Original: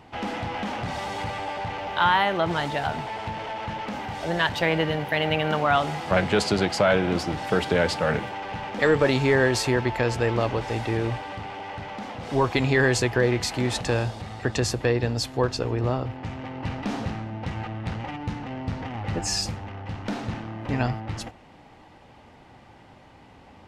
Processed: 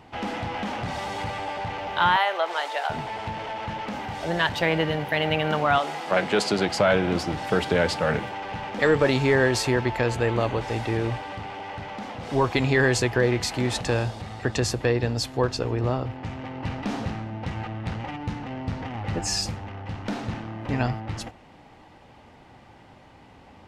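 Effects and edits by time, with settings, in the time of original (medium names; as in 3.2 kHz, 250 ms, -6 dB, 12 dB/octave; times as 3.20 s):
2.16–2.90 s: high-pass 490 Hz 24 dB/octave
5.78–6.67 s: high-pass 370 Hz -> 140 Hz
10.06–10.61 s: band-stop 5.3 kHz, Q 5.3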